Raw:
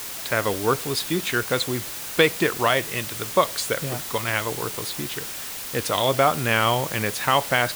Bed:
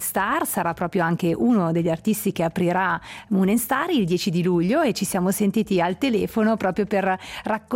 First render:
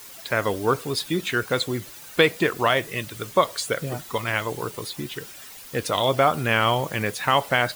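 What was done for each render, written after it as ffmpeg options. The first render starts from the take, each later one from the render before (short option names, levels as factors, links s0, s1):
-af "afftdn=nr=11:nf=-34"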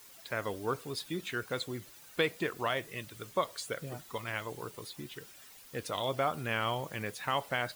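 -af "volume=0.251"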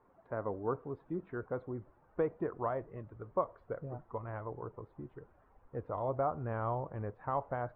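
-af "lowpass=f=1100:w=0.5412,lowpass=f=1100:w=1.3066,asubboost=boost=5:cutoff=76"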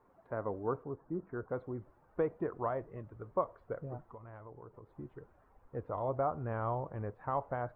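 -filter_complex "[0:a]asettb=1/sr,asplit=3[s0][s1][s2];[s0]atrim=end=0.834[s3];[s1]atrim=start=0.83:end=1.49,asetpts=PTS-STARTPTS,afade=t=in:d=0.004:c=qsin,afade=t=out:st=0.656:d=0.004:c=qsin,lowpass=f=1600:w=0.5412,lowpass=f=1600:w=1.3066[s4];[s2]atrim=start=1.486[s5];[s3][s4]acrossfade=d=0.004:c1=hsin:c2=qsin[s6];[s6][s5]acrossfade=d=0.004:c1=qsin:c2=hsin,asettb=1/sr,asplit=3[s7][s8][s9];[s7]atrim=end=4.114[s10];[s8]atrim=start=4.11:end=4.96,asetpts=PTS-STARTPTS,afade=t=in:d=0.004:c=qsin,afade=t=out:st=0.846:d=0.004:c=qsin,acompressor=threshold=0.00282:ratio=2.5:attack=3.2:release=140:knee=1:detection=peak[s11];[s9]atrim=start=4.956[s12];[s10][s11]acrossfade=d=0.004:c1=hsin:c2=qsin[s13];[s13][s12]acrossfade=d=0.004:c1=qsin:c2=hsin"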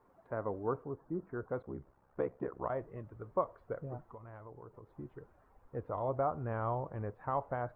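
-filter_complex "[0:a]asplit=3[s0][s1][s2];[s0]afade=t=out:st=1.62:d=0.02[s3];[s1]aeval=exprs='val(0)*sin(2*PI*33*n/s)':c=same,afade=t=in:st=1.62:d=0.02,afade=t=out:st=2.68:d=0.02[s4];[s2]afade=t=in:st=2.68:d=0.02[s5];[s3][s4][s5]amix=inputs=3:normalize=0"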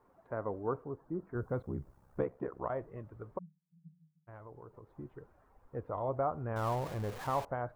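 -filter_complex "[0:a]asettb=1/sr,asplit=3[s0][s1][s2];[s0]atrim=end=1.354[s3];[s1]atrim=start=1.35:end=2.24,asetpts=PTS-STARTPTS,afade=t=in:d=0.004:c=qsin,afade=t=out:st=0.886:d=0.004:c=qsin,bass=f=250:g=9,treble=f=4000:g=9[s4];[s2]atrim=start=2.236[s5];[s3][s4]acrossfade=d=0.004:c1=hsin:c2=qsin[s6];[s6][s5]acrossfade=d=0.004:c1=qsin:c2=hsin,asplit=3[s7][s8][s9];[s7]afade=t=out:st=3.37:d=0.02[s10];[s8]asuperpass=centerf=170:order=12:qfactor=5,afade=t=in:st=3.37:d=0.02,afade=t=out:st=4.27:d=0.02[s11];[s9]afade=t=in:st=4.27:d=0.02[s12];[s10][s11][s12]amix=inputs=3:normalize=0,asettb=1/sr,asplit=3[s13][s14][s15];[s13]atrim=end=6.564[s16];[s14]atrim=start=6.56:end=7.45,asetpts=PTS-STARTPTS,afade=t=in:d=0.004:c=qsin,afade=t=out:st=0.886:d=0.004:c=qsin,aeval=exprs='val(0)+0.5*0.01*sgn(val(0))':c=same[s17];[s15]atrim=start=7.446[s18];[s16][s17]acrossfade=d=0.004:c1=hsin:c2=qsin[s19];[s19][s18]acrossfade=d=0.004:c1=qsin:c2=hsin"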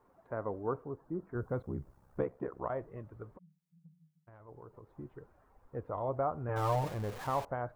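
-filter_complex "[0:a]asplit=3[s0][s1][s2];[s0]afade=t=out:st=3.34:d=0.02[s3];[s1]acompressor=threshold=0.00251:ratio=6:attack=3.2:release=140:knee=1:detection=peak,afade=t=in:st=3.34:d=0.02,afade=t=out:st=4.47:d=0.02[s4];[s2]afade=t=in:st=4.47:d=0.02[s5];[s3][s4][s5]amix=inputs=3:normalize=0,asettb=1/sr,asplit=3[s6][s7][s8];[s6]atrim=end=6.484[s9];[s7]atrim=start=6.48:end=6.89,asetpts=PTS-STARTPTS,afade=t=in:d=0.004:c=qsin,afade=t=out:st=0.406:d=0.004:c=qsin,aecho=1:1:6.6:0.89,atrim=end_sample=18081[s10];[s8]atrim=start=6.886[s11];[s9][s10]acrossfade=d=0.004:c1=hsin:c2=qsin[s12];[s12][s11]acrossfade=d=0.004:c1=qsin:c2=hsin"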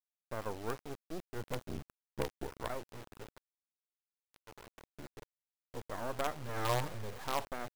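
-af "acrusher=bits=5:dc=4:mix=0:aa=0.000001,volume=12.6,asoftclip=hard,volume=0.0794"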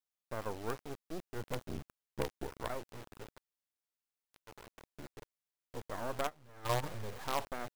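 -filter_complex "[0:a]asplit=3[s0][s1][s2];[s0]afade=t=out:st=6.26:d=0.02[s3];[s1]agate=range=0.141:threshold=0.0224:ratio=16:release=100:detection=peak,afade=t=in:st=6.26:d=0.02,afade=t=out:st=6.82:d=0.02[s4];[s2]afade=t=in:st=6.82:d=0.02[s5];[s3][s4][s5]amix=inputs=3:normalize=0"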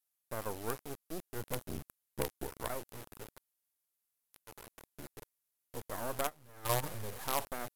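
-af "equalizer=f=12000:t=o:w=0.93:g=14"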